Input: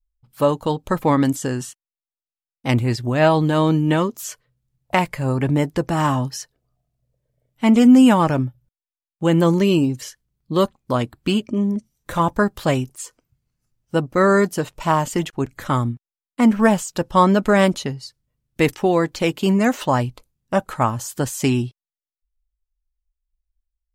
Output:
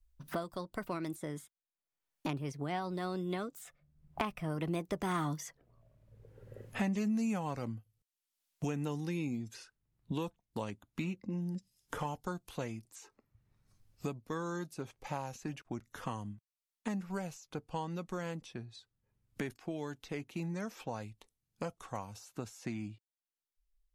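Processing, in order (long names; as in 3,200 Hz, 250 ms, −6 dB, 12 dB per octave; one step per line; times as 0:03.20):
source passing by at 0:05.64, 51 m/s, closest 10 metres
multiband upward and downward compressor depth 100%
level +6 dB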